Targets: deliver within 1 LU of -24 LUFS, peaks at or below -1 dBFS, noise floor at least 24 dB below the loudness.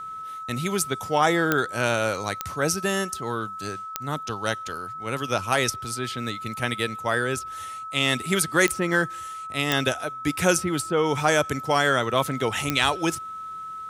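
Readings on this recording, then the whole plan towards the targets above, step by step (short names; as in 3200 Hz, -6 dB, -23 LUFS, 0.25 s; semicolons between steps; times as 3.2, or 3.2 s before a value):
clicks 6; steady tone 1300 Hz; tone level -33 dBFS; loudness -25.0 LUFS; peak -5.0 dBFS; loudness target -24.0 LUFS
-> de-click; notch 1300 Hz, Q 30; gain +1 dB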